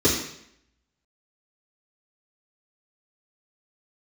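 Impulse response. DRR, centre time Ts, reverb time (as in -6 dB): -12.0 dB, 32 ms, 0.70 s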